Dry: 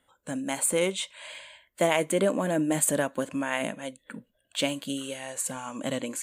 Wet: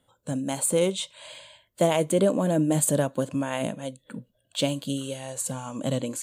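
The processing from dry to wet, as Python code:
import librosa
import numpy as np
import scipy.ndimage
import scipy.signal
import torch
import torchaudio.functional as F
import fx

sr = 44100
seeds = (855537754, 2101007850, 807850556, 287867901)

y = fx.graphic_eq(x, sr, hz=(125, 500, 2000, 4000), db=(12, 3, -8, 4))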